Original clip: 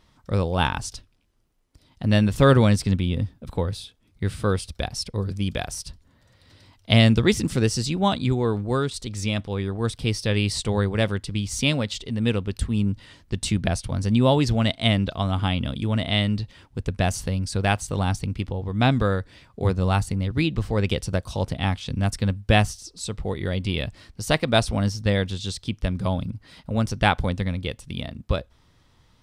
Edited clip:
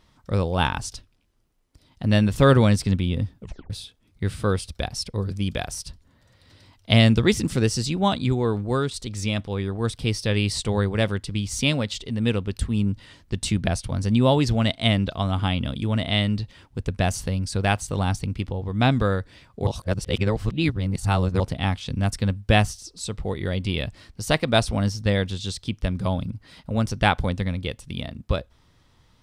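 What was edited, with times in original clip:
3.4 tape stop 0.30 s
19.67–21.4 reverse

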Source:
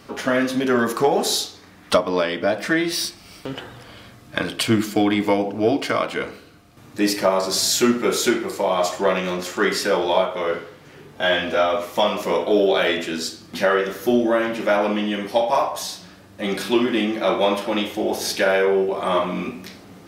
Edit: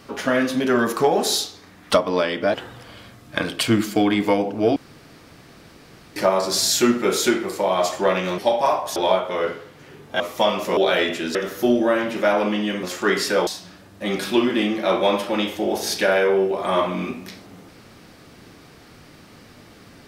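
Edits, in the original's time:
2.54–3.54 cut
5.76–7.16 room tone
9.38–10.02 swap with 15.27–15.85
11.26–11.78 cut
12.35–12.65 cut
13.23–13.79 cut

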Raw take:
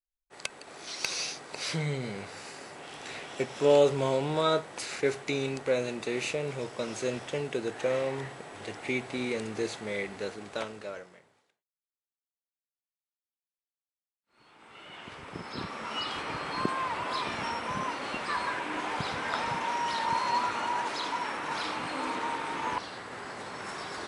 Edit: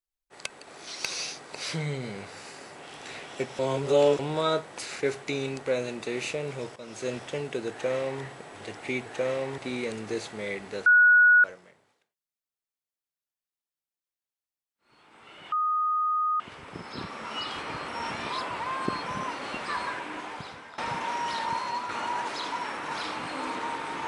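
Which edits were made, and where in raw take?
3.59–4.19 reverse
6.76–7.1 fade in, from -14.5 dB
7.71–8.23 copy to 9.06
10.34–10.92 bleep 1460 Hz -14 dBFS
15 add tone 1240 Hz -23 dBFS 0.88 s
16.48–17.66 reverse
18.41–19.38 fade out, to -18.5 dB
19.98–20.49 fade out, to -6 dB

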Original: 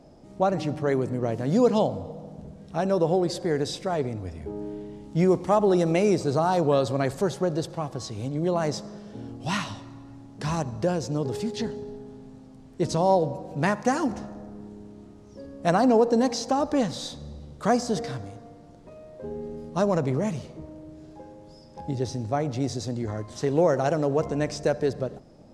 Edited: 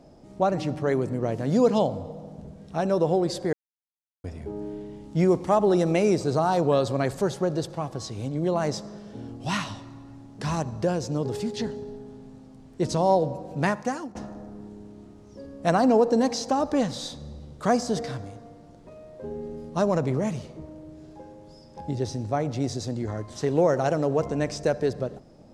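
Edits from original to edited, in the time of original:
3.53–4.24 mute
13.65–14.15 fade out, to -18.5 dB

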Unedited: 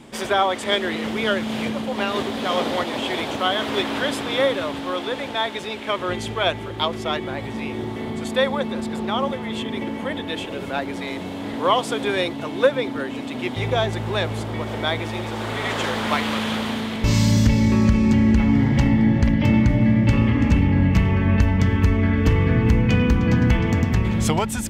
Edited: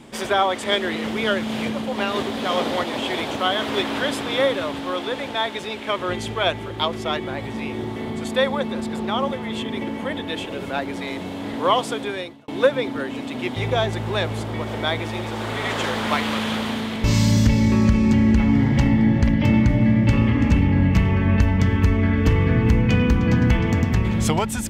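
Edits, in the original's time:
11.81–12.48 fade out

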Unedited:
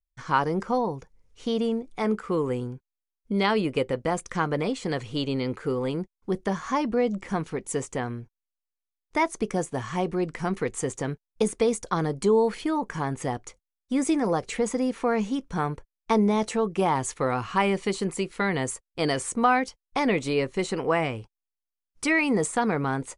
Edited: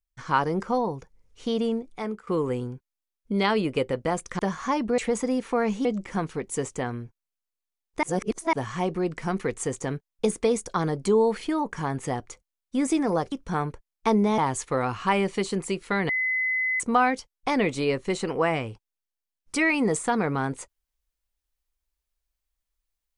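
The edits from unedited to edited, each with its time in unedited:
1.76–2.27 fade out, to -14.5 dB
4.39–6.43 cut
9.2–9.7 reverse
14.49–15.36 move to 7.02
16.42–16.87 cut
18.58–19.29 bleep 2030 Hz -22.5 dBFS

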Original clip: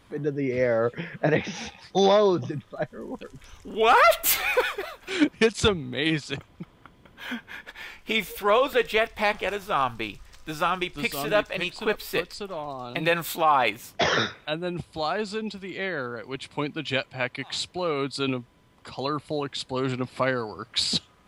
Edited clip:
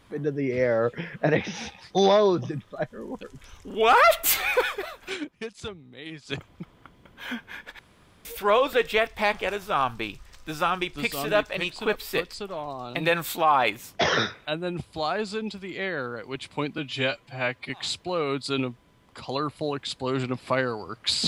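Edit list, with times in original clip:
5.13–6.31 dip -15 dB, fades 0.35 s exponential
7.79–8.25 room tone
16.78–17.39 stretch 1.5×

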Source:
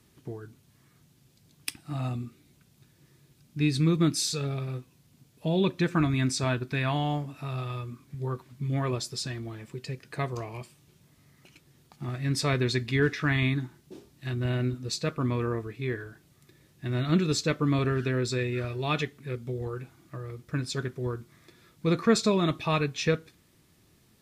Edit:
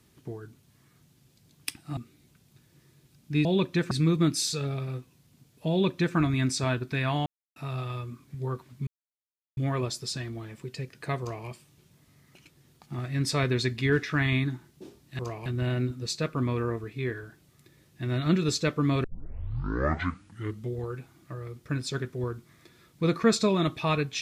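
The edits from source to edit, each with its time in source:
1.97–2.23 cut
5.5–5.96 copy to 3.71
7.06–7.36 mute
8.67 insert silence 0.70 s
10.3–10.57 copy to 14.29
17.87 tape start 1.70 s

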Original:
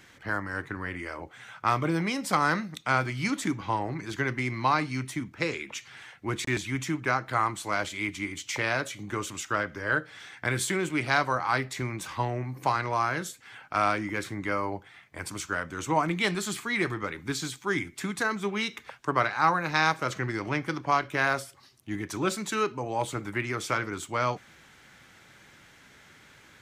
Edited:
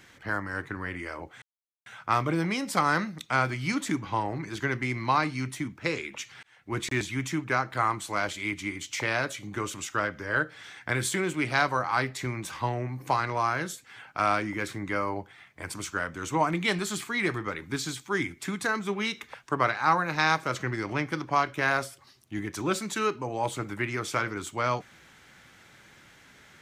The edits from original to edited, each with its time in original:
1.42 insert silence 0.44 s
5.99–6.33 fade in

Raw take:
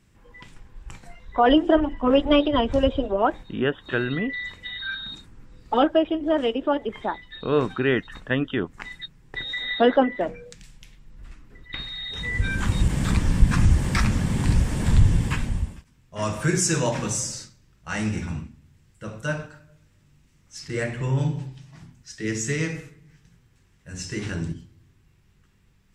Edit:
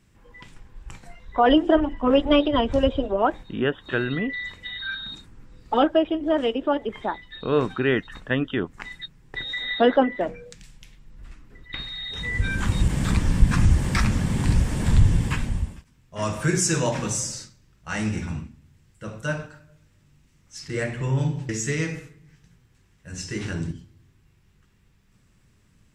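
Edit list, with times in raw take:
21.49–22.3 cut

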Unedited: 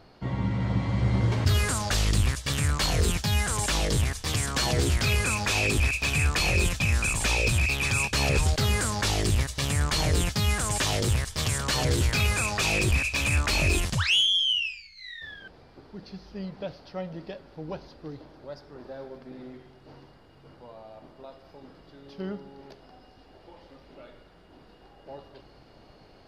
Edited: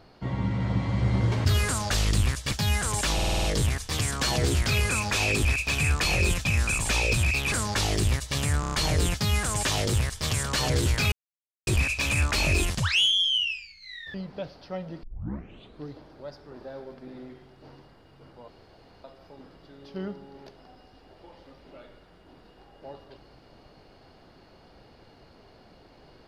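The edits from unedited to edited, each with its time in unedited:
2.51–3.16 cut
3.79 stutter 0.05 s, 7 plays
7.87–8.79 cut
9.87 stutter 0.03 s, 5 plays
12.27–12.82 mute
15.29–16.38 cut
17.27 tape start 0.83 s
20.72–21.28 room tone

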